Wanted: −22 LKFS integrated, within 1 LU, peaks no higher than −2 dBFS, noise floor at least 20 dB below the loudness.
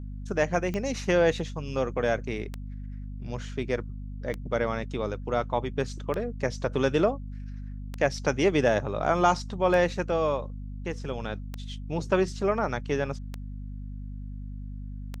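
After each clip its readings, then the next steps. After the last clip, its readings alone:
number of clicks 9; mains hum 50 Hz; hum harmonics up to 250 Hz; level of the hum −34 dBFS; integrated loudness −28.0 LKFS; sample peak −8.5 dBFS; target loudness −22.0 LKFS
→ click removal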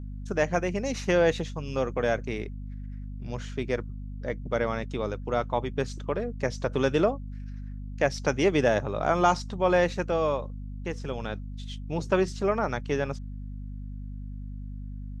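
number of clicks 0; mains hum 50 Hz; hum harmonics up to 250 Hz; level of the hum −34 dBFS
→ mains-hum notches 50/100/150/200/250 Hz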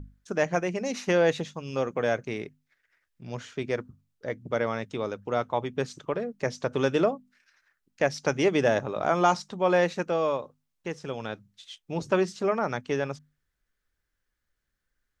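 mains hum none found; integrated loudness −28.0 LKFS; sample peak −9.5 dBFS; target loudness −22.0 LKFS
→ level +6 dB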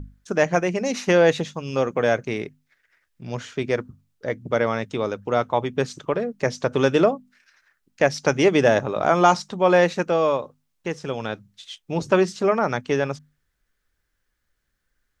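integrated loudness −22.0 LKFS; sample peak −3.5 dBFS; background noise floor −75 dBFS

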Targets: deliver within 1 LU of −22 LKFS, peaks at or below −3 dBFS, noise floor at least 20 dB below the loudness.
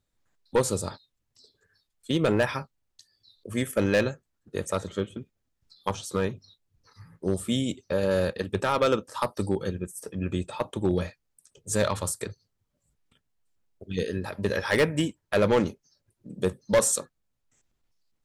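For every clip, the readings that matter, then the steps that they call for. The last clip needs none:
share of clipped samples 0.6%; peaks flattened at −15.5 dBFS; integrated loudness −28.0 LKFS; sample peak −15.5 dBFS; target loudness −22.0 LKFS
→ clipped peaks rebuilt −15.5 dBFS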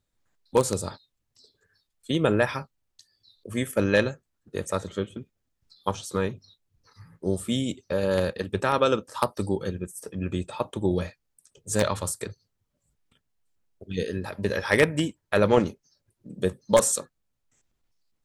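share of clipped samples 0.0%; integrated loudness −27.0 LKFS; sample peak −6.5 dBFS; target loudness −22.0 LKFS
→ level +5 dB
brickwall limiter −3 dBFS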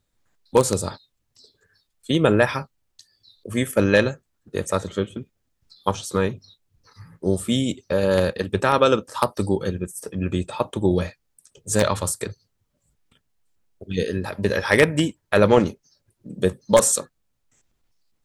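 integrated loudness −22.0 LKFS; sample peak −3.0 dBFS; background noise floor −73 dBFS

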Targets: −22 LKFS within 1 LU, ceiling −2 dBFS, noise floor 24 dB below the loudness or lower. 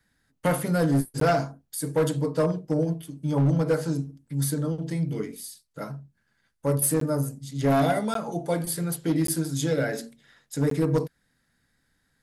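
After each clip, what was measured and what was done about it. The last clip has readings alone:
share of clipped samples 1.4%; peaks flattened at −16.5 dBFS; number of dropouts 5; longest dropout 13 ms; integrated loudness −26.0 LKFS; sample peak −16.5 dBFS; target loudness −22.0 LKFS
→ clipped peaks rebuilt −16.5 dBFS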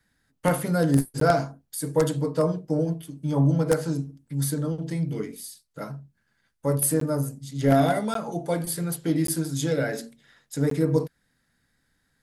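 share of clipped samples 0.0%; number of dropouts 5; longest dropout 13 ms
→ repair the gap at 0:01.20/0:07.00/0:08.14/0:09.27/0:10.70, 13 ms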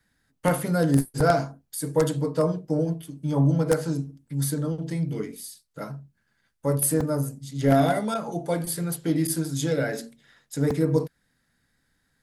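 number of dropouts 0; integrated loudness −25.5 LKFS; sample peak −7.5 dBFS; target loudness −22.0 LKFS
→ level +3.5 dB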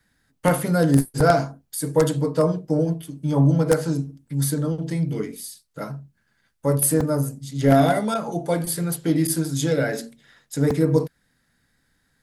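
integrated loudness −22.0 LKFS; sample peak −4.0 dBFS; background noise floor −69 dBFS

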